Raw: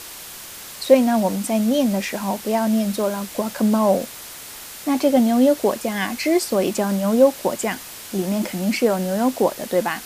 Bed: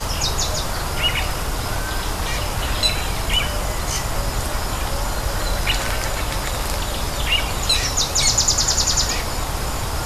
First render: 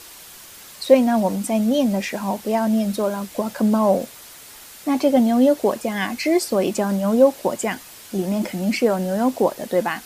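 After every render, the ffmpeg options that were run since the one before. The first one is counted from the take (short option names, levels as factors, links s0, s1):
-af "afftdn=nr=6:nf=-37"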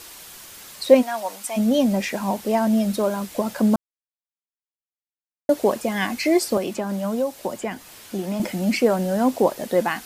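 -filter_complex "[0:a]asplit=3[s0][s1][s2];[s0]afade=t=out:st=1.01:d=0.02[s3];[s1]highpass=870,afade=t=in:st=1.01:d=0.02,afade=t=out:st=1.56:d=0.02[s4];[s2]afade=t=in:st=1.56:d=0.02[s5];[s3][s4][s5]amix=inputs=3:normalize=0,asettb=1/sr,asplit=3[s6][s7][s8];[s6]atrim=end=6.574[s9];[s7]atrim=start=6.57:end=8.4,asetpts=PTS-STARTPTS,afade=t=in:d=0.004:c=qsin,afade=t=out:st=1.826:d=0.004:c=qsin,acrossover=split=130|810|4000[s10][s11][s12][s13];[s10]acompressor=threshold=0.00398:ratio=3[s14];[s11]acompressor=threshold=0.0501:ratio=3[s15];[s12]acompressor=threshold=0.0178:ratio=3[s16];[s13]acompressor=threshold=0.00631:ratio=3[s17];[s14][s15][s16][s17]amix=inputs=4:normalize=0[s18];[s8]atrim=start=8.396[s19];[s9][s18]acrossfade=d=0.004:c1=hsin:c2=qsin[s20];[s20][s19]acrossfade=d=0.004:c1=qsin:c2=hsin,asplit=3[s21][s22][s23];[s21]atrim=end=3.76,asetpts=PTS-STARTPTS,afade=t=out:st=3.756:d=0.004:c=hsin[s24];[s22]atrim=start=3.76:end=5.49,asetpts=PTS-STARTPTS,volume=0[s25];[s23]atrim=start=5.49,asetpts=PTS-STARTPTS,afade=t=in:d=0.004:c=hsin[s26];[s24][s25][s26]concat=n=3:v=0:a=1"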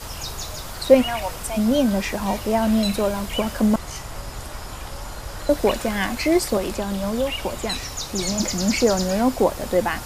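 -filter_complex "[1:a]volume=0.299[s0];[0:a][s0]amix=inputs=2:normalize=0"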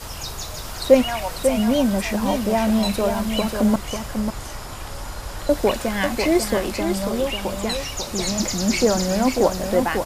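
-af "aecho=1:1:544:0.473"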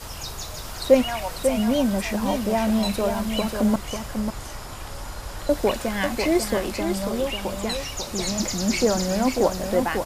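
-af "volume=0.75"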